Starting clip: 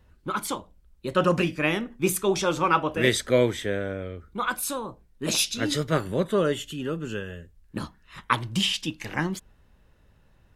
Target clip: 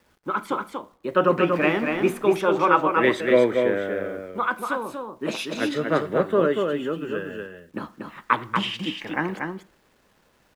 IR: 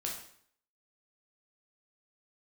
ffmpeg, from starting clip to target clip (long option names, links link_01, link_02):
-filter_complex "[0:a]asettb=1/sr,asplit=3[link_01][link_02][link_03];[link_01]atrim=end=1.524[link_04];[link_02]atrim=start=1.52:end=2.13,asetpts=PTS-STARTPTS,afade=type=in:duration=0.004:curve=qsin,afade=type=out:start_time=0.606:duration=0.004:curve=qsin,aeval=exprs='val(0)+0.5*0.0299*sgn(val(0))':channel_layout=same[link_05];[link_03]atrim=start=2.126[link_06];[link_04][link_05]acrossfade=duration=0.004:curve1=hsin:curve2=qsin[link_07];[link_07][link_06]acrossfade=duration=0.004:curve1=qsin:curve2=hsin,acrossover=split=200 2600:gain=0.126 1 0.1[link_08][link_09][link_10];[link_08][link_09][link_10]amix=inputs=3:normalize=0,acrusher=bits=10:mix=0:aa=0.000001,aecho=1:1:237:0.596,asplit=2[link_11][link_12];[1:a]atrim=start_sample=2205,adelay=40[link_13];[link_12][link_13]afir=irnorm=-1:irlink=0,volume=-22.5dB[link_14];[link_11][link_14]amix=inputs=2:normalize=0,volume=3.5dB"